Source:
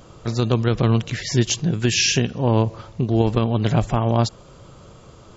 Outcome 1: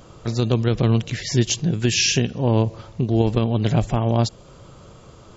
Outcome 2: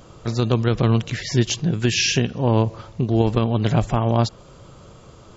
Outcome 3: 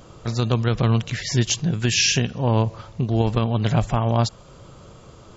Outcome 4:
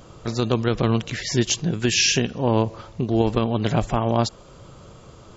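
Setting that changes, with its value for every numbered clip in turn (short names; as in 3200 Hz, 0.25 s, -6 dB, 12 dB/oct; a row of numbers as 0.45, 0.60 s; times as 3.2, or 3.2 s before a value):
dynamic EQ, frequency: 1200, 8000, 340, 120 Hz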